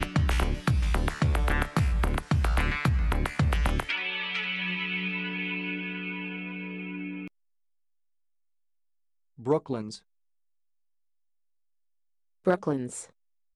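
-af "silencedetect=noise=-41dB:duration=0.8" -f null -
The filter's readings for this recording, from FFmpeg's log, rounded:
silence_start: 7.28
silence_end: 9.39 | silence_duration: 2.11
silence_start: 9.97
silence_end: 12.45 | silence_duration: 2.48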